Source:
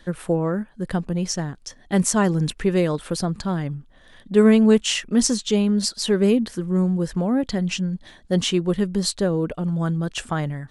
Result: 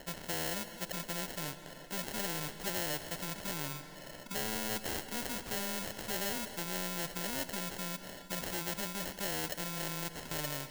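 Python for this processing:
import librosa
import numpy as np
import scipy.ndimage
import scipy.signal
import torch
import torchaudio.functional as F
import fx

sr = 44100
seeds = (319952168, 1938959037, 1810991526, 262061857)

p1 = scipy.signal.sosfilt(scipy.signal.butter(6, 9100.0, 'lowpass', fs=sr, output='sos'), x)
p2 = fx.low_shelf(p1, sr, hz=160.0, db=-11.0)
p3 = fx.hpss(p2, sr, part='percussive', gain_db=-18)
p4 = fx.high_shelf(p3, sr, hz=4400.0, db=-7.0)
p5 = fx.over_compress(p4, sr, threshold_db=-31.0, ratio=-1.0)
p6 = p4 + (p5 * 10.0 ** (-2.0 / 20.0))
p7 = np.clip(p6, -10.0 ** (-21.5 / 20.0), 10.0 ** (-21.5 / 20.0))
p8 = fx.small_body(p7, sr, hz=(590.0, 2200.0, 3600.0), ring_ms=45, db=11)
p9 = fx.sample_hold(p8, sr, seeds[0], rate_hz=1200.0, jitter_pct=0)
p10 = fx.rev_schroeder(p9, sr, rt60_s=3.3, comb_ms=29, drr_db=18.5)
p11 = fx.spectral_comp(p10, sr, ratio=2.0)
y = p11 * 10.0 ** (-3.0 / 20.0)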